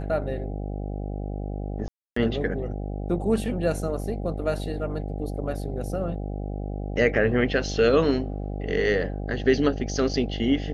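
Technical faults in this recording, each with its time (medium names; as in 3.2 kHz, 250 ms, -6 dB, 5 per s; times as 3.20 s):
buzz 50 Hz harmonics 16 -31 dBFS
1.88–2.16 s: dropout 284 ms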